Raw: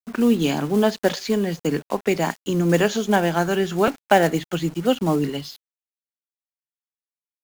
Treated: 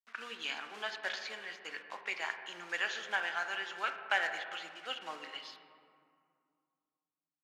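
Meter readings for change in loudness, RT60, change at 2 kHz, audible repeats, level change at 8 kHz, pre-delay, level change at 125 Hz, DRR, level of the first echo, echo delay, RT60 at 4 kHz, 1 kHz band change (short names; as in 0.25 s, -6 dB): -16.0 dB, 2.3 s, -6.0 dB, none, -18.5 dB, 4 ms, under -40 dB, 6.0 dB, none, none, 1.3 s, -15.5 dB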